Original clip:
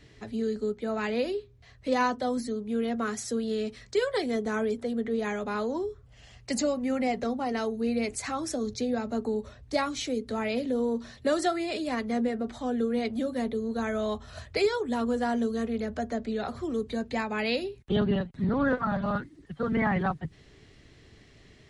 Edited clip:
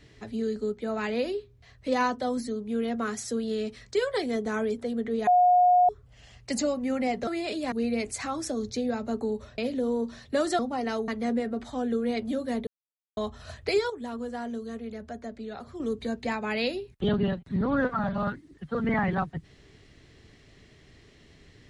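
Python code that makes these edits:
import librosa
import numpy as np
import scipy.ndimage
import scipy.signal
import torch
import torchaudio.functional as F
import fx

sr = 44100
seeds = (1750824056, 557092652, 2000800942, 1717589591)

y = fx.edit(x, sr, fx.bleep(start_s=5.27, length_s=0.62, hz=720.0, db=-16.0),
    fx.swap(start_s=7.27, length_s=0.49, other_s=11.51, other_length_s=0.45),
    fx.cut(start_s=9.62, length_s=0.88),
    fx.silence(start_s=13.55, length_s=0.5),
    fx.clip_gain(start_s=14.78, length_s=1.9, db=-7.0), tone=tone)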